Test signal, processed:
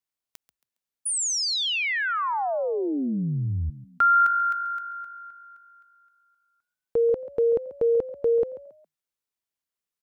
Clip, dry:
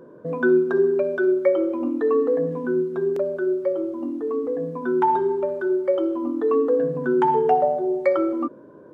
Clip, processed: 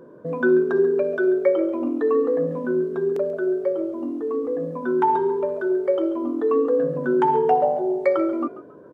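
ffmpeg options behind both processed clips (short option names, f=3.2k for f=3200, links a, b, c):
-filter_complex "[0:a]asplit=4[a][b][c][d];[b]adelay=137,afreqshift=50,volume=-16dB[e];[c]adelay=274,afreqshift=100,volume=-25.9dB[f];[d]adelay=411,afreqshift=150,volume=-35.8dB[g];[a][e][f][g]amix=inputs=4:normalize=0"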